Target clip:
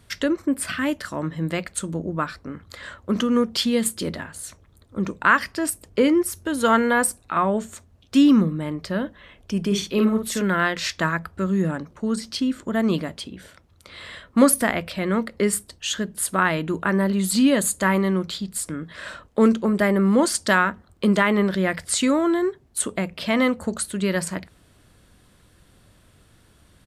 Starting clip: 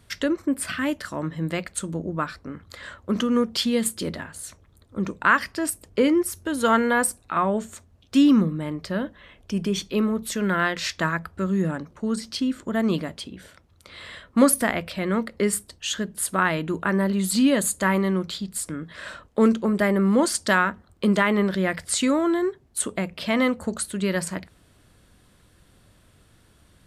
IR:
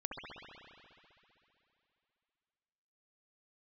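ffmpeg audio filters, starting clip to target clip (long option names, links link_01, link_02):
-filter_complex "[0:a]asplit=3[link_01][link_02][link_03];[link_01]afade=type=out:start_time=9.7:duration=0.02[link_04];[link_02]asplit=2[link_05][link_06];[link_06]adelay=50,volume=-4.5dB[link_07];[link_05][link_07]amix=inputs=2:normalize=0,afade=type=in:start_time=9.7:duration=0.02,afade=type=out:start_time=10.41:duration=0.02[link_08];[link_03]afade=type=in:start_time=10.41:duration=0.02[link_09];[link_04][link_08][link_09]amix=inputs=3:normalize=0,volume=1.5dB"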